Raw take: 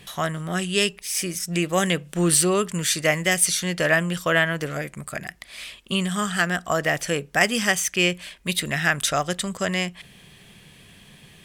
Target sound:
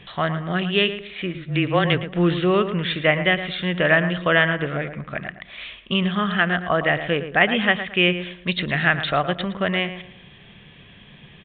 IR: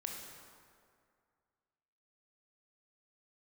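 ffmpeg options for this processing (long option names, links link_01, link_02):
-filter_complex "[0:a]asplit=2[link_01][link_02];[link_02]adelay=112,lowpass=frequency=2100:poles=1,volume=-10dB,asplit=2[link_03][link_04];[link_04]adelay=112,lowpass=frequency=2100:poles=1,volume=0.33,asplit=2[link_05][link_06];[link_06]adelay=112,lowpass=frequency=2100:poles=1,volume=0.33,asplit=2[link_07][link_08];[link_08]adelay=112,lowpass=frequency=2100:poles=1,volume=0.33[link_09];[link_01][link_03][link_05][link_07][link_09]amix=inputs=5:normalize=0,asettb=1/sr,asplit=3[link_10][link_11][link_12];[link_10]atrim=end=1.344[link_13];[link_11]atrim=start=1.34:end=2.03,asetpts=PTS-STARTPTS,afade=type=in:duration=0.004:curve=qsin,afade=type=out:start_time=0.686:duration=0.004:curve=qsin,afreqshift=-22[link_14];[link_12]atrim=start=2.026[link_15];[link_13][link_14]acrossfade=duration=0.004:curve1=hsin:curve2=qsin[link_16];[link_16][link_15]acrossfade=duration=0.004:curve1=qsin:curve2=hsin,aresample=8000,aresample=44100,volume=2.5dB"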